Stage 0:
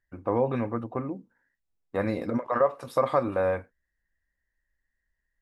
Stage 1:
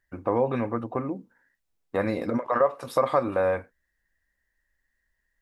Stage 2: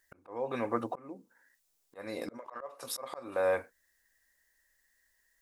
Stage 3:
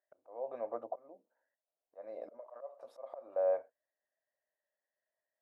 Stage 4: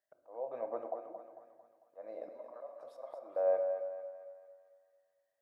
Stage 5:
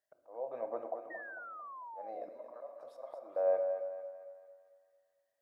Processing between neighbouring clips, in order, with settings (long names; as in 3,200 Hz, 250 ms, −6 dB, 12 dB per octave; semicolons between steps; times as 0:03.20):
low-shelf EQ 210 Hz −4.5 dB; in parallel at 0 dB: downward compressor, threshold −34 dBFS, peak gain reduction 15.5 dB
bass and treble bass −11 dB, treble +11 dB; volume swells 659 ms; level +2.5 dB
resonant band-pass 630 Hz, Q 6.9; level +4 dB
feedback echo with a high-pass in the loop 224 ms, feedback 53%, high-pass 360 Hz, level −8 dB; rectangular room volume 950 cubic metres, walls mixed, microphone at 0.6 metres
sound drawn into the spectrogram fall, 0:01.10–0:02.25, 680–1,900 Hz −47 dBFS